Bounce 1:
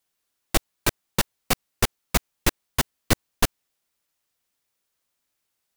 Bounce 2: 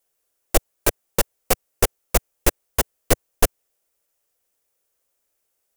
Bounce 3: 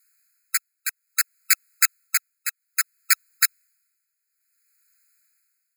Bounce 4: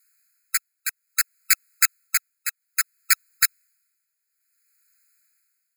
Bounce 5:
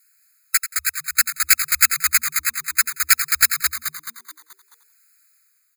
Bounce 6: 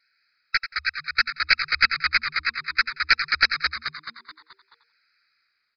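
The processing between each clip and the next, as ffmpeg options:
ffmpeg -i in.wav -af "equalizer=frequency=125:width_type=o:width=1:gain=-9,equalizer=frequency=250:width_type=o:width=1:gain=-7,equalizer=frequency=500:width_type=o:width=1:gain=6,equalizer=frequency=1000:width_type=o:width=1:gain=-5,equalizer=frequency=2000:width_type=o:width=1:gain=-4,equalizer=frequency=4000:width_type=o:width=1:gain=-8,volume=5.5dB" out.wav
ffmpeg -i in.wav -af "tremolo=f=0.6:d=0.79,aeval=exprs='0.794*sin(PI/2*2.82*val(0)/0.794)':channel_layout=same,afftfilt=real='re*eq(mod(floor(b*sr/1024/1300),2),1)':imag='im*eq(mod(floor(b*sr/1024/1300),2),1)':win_size=1024:overlap=0.75,volume=-1dB" out.wav
ffmpeg -i in.wav -af "aeval=exprs='0.891*(cos(1*acos(clip(val(0)/0.891,-1,1)))-cos(1*PI/2))+0.0282*(cos(4*acos(clip(val(0)/0.891,-1,1)))-cos(4*PI/2))+0.0316*(cos(6*acos(clip(val(0)/0.891,-1,1)))-cos(6*PI/2))':channel_layout=same" out.wav
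ffmpeg -i in.wav -filter_complex "[0:a]asplit=2[link_01][link_02];[link_02]aecho=0:1:89|178:0.266|0.0506[link_03];[link_01][link_03]amix=inputs=2:normalize=0,asoftclip=type=tanh:threshold=-7.5dB,asplit=2[link_04][link_05];[link_05]asplit=6[link_06][link_07][link_08][link_09][link_10][link_11];[link_06]adelay=215,afreqshift=-79,volume=-5.5dB[link_12];[link_07]adelay=430,afreqshift=-158,volume=-12.1dB[link_13];[link_08]adelay=645,afreqshift=-237,volume=-18.6dB[link_14];[link_09]adelay=860,afreqshift=-316,volume=-25.2dB[link_15];[link_10]adelay=1075,afreqshift=-395,volume=-31.7dB[link_16];[link_11]adelay=1290,afreqshift=-474,volume=-38.3dB[link_17];[link_12][link_13][link_14][link_15][link_16][link_17]amix=inputs=6:normalize=0[link_18];[link_04][link_18]amix=inputs=2:normalize=0,volume=5.5dB" out.wav
ffmpeg -i in.wav -af "aresample=11025,aresample=44100,volume=1.5dB" out.wav

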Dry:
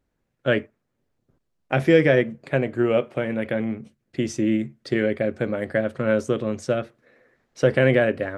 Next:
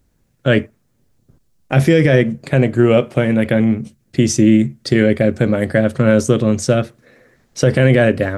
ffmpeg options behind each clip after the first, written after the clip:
ffmpeg -i in.wav -af "bass=frequency=250:gain=8,treble=frequency=4000:gain=10,alimiter=level_in=8.5dB:limit=-1dB:release=50:level=0:latency=1,volume=-1dB" out.wav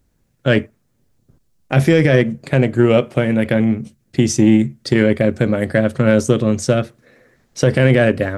ffmpeg -i in.wav -af "aeval=exprs='0.841*(cos(1*acos(clip(val(0)/0.841,-1,1)))-cos(1*PI/2))+0.0473*(cos(3*acos(clip(val(0)/0.841,-1,1)))-cos(3*PI/2))':channel_layout=same" out.wav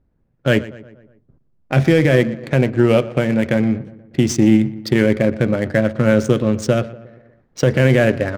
ffmpeg -i in.wav -filter_complex "[0:a]asplit=2[link_01][link_02];[link_02]adelay=120,lowpass=frequency=4800:poles=1,volume=-17dB,asplit=2[link_03][link_04];[link_04]adelay=120,lowpass=frequency=4800:poles=1,volume=0.54,asplit=2[link_05][link_06];[link_06]adelay=120,lowpass=frequency=4800:poles=1,volume=0.54,asplit=2[link_07][link_08];[link_08]adelay=120,lowpass=frequency=4800:poles=1,volume=0.54,asplit=2[link_09][link_10];[link_10]adelay=120,lowpass=frequency=4800:poles=1,volume=0.54[link_11];[link_01][link_03][link_05][link_07][link_09][link_11]amix=inputs=6:normalize=0,adynamicsmooth=sensitivity=5.5:basefreq=1600,volume=-1dB" out.wav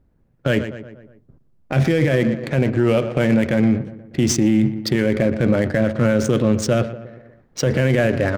ffmpeg -i in.wav -af "alimiter=limit=-11.5dB:level=0:latency=1:release=25,volume=3.5dB" out.wav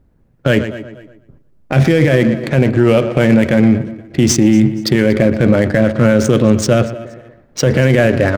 ffmpeg -i in.wav -af "aecho=1:1:237|474:0.0944|0.0283,volume=6dB" out.wav

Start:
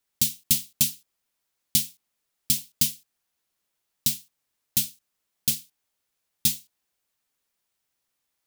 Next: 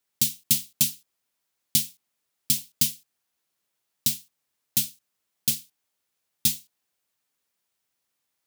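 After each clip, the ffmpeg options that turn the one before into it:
ffmpeg -i in.wav -af "highpass=76" out.wav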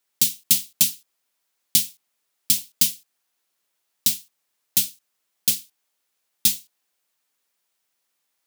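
ffmpeg -i in.wav -af "aeval=exprs='0.596*(cos(1*acos(clip(val(0)/0.596,-1,1)))-cos(1*PI/2))+0.0237*(cos(2*acos(clip(val(0)/0.596,-1,1)))-cos(2*PI/2))':channel_layout=same,lowshelf=frequency=190:gain=-11.5,volume=4dB" out.wav

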